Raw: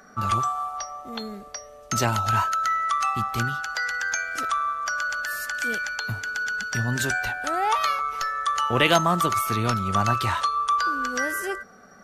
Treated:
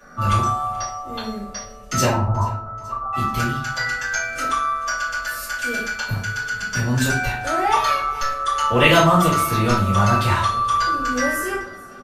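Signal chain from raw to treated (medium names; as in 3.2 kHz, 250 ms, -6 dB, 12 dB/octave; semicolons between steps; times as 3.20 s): 2.06–3.13 s: steep low-pass 1.1 kHz 48 dB/octave; feedback delay 432 ms, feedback 55%, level -21.5 dB; simulated room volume 43 m³, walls mixed, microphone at 2.6 m; trim -7 dB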